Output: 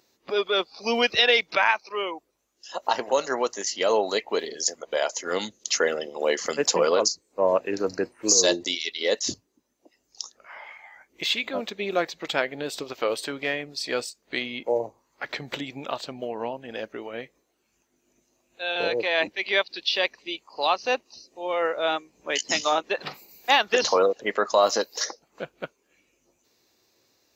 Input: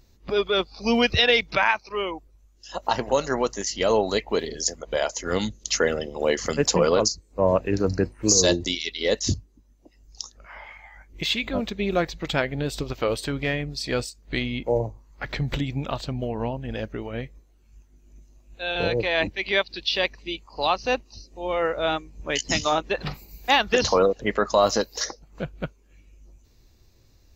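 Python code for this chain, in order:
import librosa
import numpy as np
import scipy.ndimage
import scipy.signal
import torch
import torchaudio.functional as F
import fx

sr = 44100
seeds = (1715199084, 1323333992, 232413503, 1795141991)

y = scipy.signal.sosfilt(scipy.signal.butter(2, 360.0, 'highpass', fs=sr, output='sos'), x)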